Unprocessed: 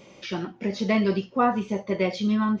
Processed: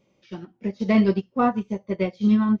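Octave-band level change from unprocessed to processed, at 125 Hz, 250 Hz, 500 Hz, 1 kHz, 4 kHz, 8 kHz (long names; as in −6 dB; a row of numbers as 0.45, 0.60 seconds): +3.0 dB, +4.0 dB, 0.0 dB, −1.0 dB, −6.0 dB, can't be measured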